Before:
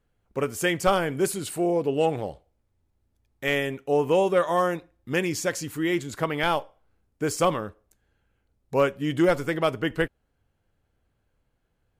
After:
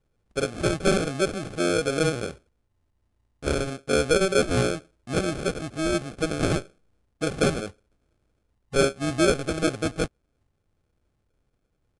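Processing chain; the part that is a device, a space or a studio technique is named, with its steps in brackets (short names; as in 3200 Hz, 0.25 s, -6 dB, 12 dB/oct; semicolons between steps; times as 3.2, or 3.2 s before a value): crushed at another speed (playback speed 2×; sample-and-hold 23×; playback speed 0.5×)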